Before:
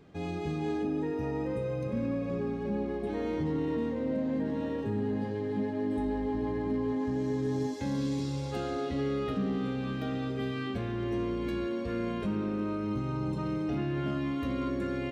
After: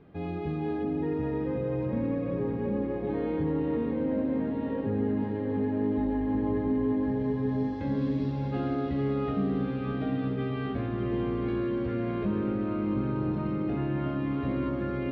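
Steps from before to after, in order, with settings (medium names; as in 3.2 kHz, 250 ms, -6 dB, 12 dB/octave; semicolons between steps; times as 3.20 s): distance through air 360 m; on a send: echo that smears into a reverb 663 ms, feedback 64%, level -8 dB; on the sum: trim +2 dB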